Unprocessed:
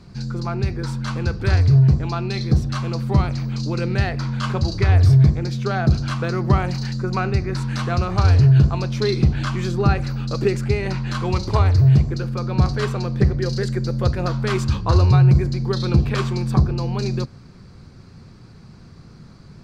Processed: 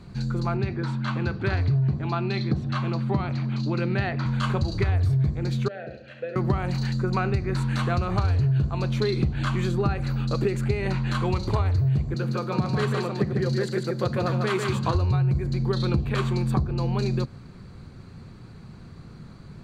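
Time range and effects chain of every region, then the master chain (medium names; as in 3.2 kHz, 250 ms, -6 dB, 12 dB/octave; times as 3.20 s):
0.57–4.26 s: band-pass 120–4400 Hz + band-stop 480 Hz, Q 7.3
5.68–6.36 s: vowel filter e + flutter echo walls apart 11.7 m, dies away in 0.55 s
12.14–14.95 s: high-pass 120 Hz 24 dB/octave + delay 148 ms -4.5 dB
whole clip: peaking EQ 5.7 kHz -8 dB 0.38 oct; band-stop 5 kHz, Q 9.7; compression 6:1, threshold -20 dBFS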